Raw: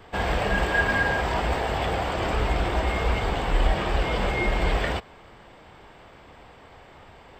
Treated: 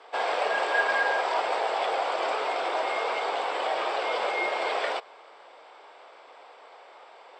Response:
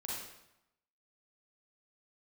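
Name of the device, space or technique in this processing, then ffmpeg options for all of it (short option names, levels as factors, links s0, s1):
phone speaker on a table: -af "highpass=f=470:w=0.5412,highpass=f=470:w=1.3066,equalizer=f=1800:t=q:w=4:g=-6,equalizer=f=2900:t=q:w=4:g=-4,equalizer=f=6700:t=q:w=4:g=-6,lowpass=f=7800:w=0.5412,lowpass=f=7800:w=1.3066,volume=1.19"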